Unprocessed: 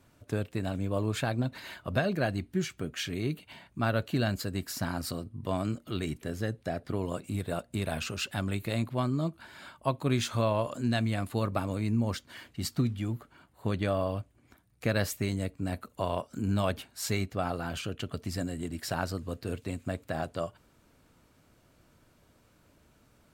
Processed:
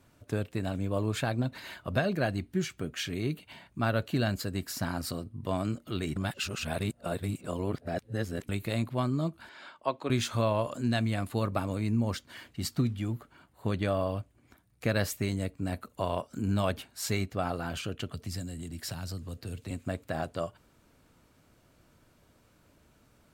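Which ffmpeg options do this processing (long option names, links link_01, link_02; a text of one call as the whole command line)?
ffmpeg -i in.wav -filter_complex "[0:a]asettb=1/sr,asplit=3[link_01][link_02][link_03];[link_01]atrim=end=9.494[link_04];[link_02]atrim=start=9.49:end=10.1,asetpts=PTS-STARTPTS,afade=type=in:duration=0.004:curve=qsin,afade=type=out:start_time=0.606:duration=0.004:curve=qsin,acrossover=split=260 6700:gain=0.126 1 0.1[link_05][link_06][link_07];[link_05][link_06][link_07]amix=inputs=3:normalize=0[link_08];[link_03]atrim=start=10.096[link_09];[link_04][link_08]acrossfade=duration=0.004:curve1=hsin:curve2=qsin[link_10];[link_10][link_09]acrossfade=duration=0.004:curve1=qsin:curve2=hsin,asettb=1/sr,asplit=3[link_11][link_12][link_13];[link_11]atrim=end=18.094[link_14];[link_12]atrim=start=18.09:end=19.71,asetpts=PTS-STARTPTS,afade=type=in:duration=0.004:curve=qsin,afade=type=out:start_time=1.616:duration=0.004:curve=qsin,acrossover=split=180|3000[link_15][link_16][link_17];[link_16]acompressor=threshold=-43dB:ratio=6:attack=3.2:release=140:knee=2.83:detection=peak[link_18];[link_15][link_18][link_17]amix=inputs=3:normalize=0[link_19];[link_13]atrim=start=19.706[link_20];[link_14][link_19]acrossfade=duration=0.004:curve1=hsin:curve2=qsin[link_21];[link_21][link_20]acrossfade=duration=0.004:curve1=qsin:curve2=hsin,asplit=3[link_22][link_23][link_24];[link_22]atrim=end=6.162[link_25];[link_23]atrim=start=6.158:end=8.492,asetpts=PTS-STARTPTS,areverse[link_26];[link_24]atrim=start=8.488[link_27];[link_25][link_26]acrossfade=duration=0.004:curve1=hsin:curve2=hsin[link_28];[link_28][link_27]acrossfade=duration=0.004:curve1=hsin:curve2=hsin" out.wav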